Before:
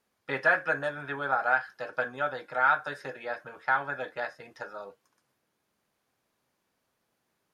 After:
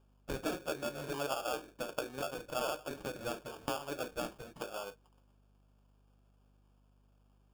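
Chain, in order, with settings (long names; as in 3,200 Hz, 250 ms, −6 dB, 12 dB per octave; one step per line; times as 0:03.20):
downward compressor 6 to 1, threshold −34 dBFS, peak gain reduction 14.5 dB
sample-rate reduction 2,000 Hz, jitter 0%
mains hum 50 Hz, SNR 26 dB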